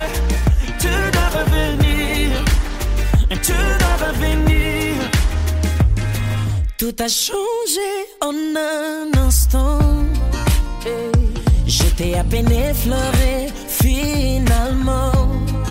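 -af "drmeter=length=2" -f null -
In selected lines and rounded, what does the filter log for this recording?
Channel 1: DR: 9.0
Overall DR: 9.0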